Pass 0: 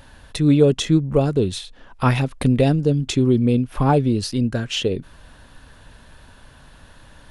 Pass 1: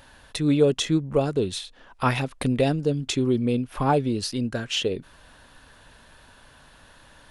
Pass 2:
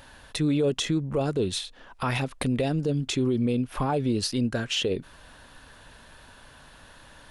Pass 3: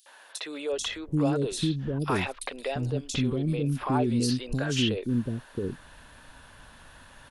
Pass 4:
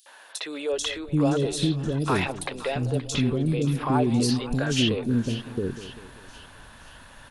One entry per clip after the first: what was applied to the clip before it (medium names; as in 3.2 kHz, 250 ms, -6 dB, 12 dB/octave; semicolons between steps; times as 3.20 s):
bass shelf 260 Hz -8.5 dB; trim -1.5 dB
peak limiter -19 dBFS, peak gain reduction 10 dB; trim +1.5 dB
three bands offset in time highs, mids, lows 60/730 ms, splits 430/4400 Hz
two-band feedback delay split 880 Hz, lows 195 ms, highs 523 ms, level -13.5 dB; trim +3 dB